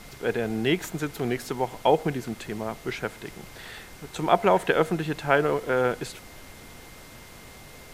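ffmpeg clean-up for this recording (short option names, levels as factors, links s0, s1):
-af "bandreject=f=2100:w=30,afftdn=nr=25:nf=-46"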